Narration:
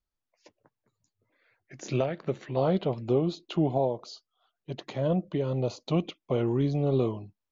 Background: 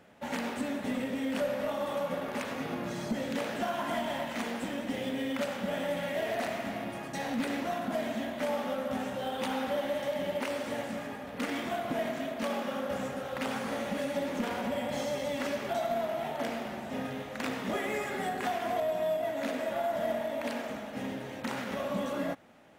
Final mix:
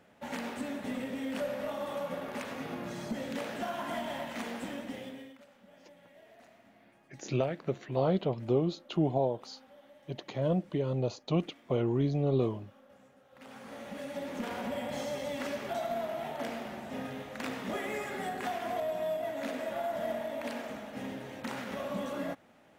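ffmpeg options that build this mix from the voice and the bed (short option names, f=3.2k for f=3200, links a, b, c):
-filter_complex "[0:a]adelay=5400,volume=-2.5dB[a];[1:a]volume=18.5dB,afade=t=out:st=4.71:d=0.67:silence=0.0841395,afade=t=in:st=13.29:d=1.33:silence=0.0794328[b];[a][b]amix=inputs=2:normalize=0"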